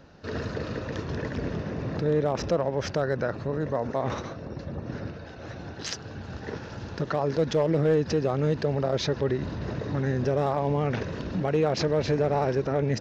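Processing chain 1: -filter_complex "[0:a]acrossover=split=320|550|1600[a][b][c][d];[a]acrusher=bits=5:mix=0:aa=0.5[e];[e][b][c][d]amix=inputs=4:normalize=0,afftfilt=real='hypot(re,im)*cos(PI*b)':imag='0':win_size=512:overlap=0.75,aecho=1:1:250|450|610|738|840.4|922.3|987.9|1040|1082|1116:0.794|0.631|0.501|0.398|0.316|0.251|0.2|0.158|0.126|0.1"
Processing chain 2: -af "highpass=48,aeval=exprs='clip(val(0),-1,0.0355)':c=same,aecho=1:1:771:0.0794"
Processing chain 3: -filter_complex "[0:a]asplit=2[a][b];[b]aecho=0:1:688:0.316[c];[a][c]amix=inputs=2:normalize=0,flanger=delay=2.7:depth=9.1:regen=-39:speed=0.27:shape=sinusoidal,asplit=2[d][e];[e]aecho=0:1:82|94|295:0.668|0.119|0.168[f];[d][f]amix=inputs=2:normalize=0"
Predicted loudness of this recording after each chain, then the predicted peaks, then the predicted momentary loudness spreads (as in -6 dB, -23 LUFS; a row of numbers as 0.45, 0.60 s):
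-27.5, -31.5, -30.0 LUFS; -12.5, -15.5, -14.5 dBFS; 13, 9, 12 LU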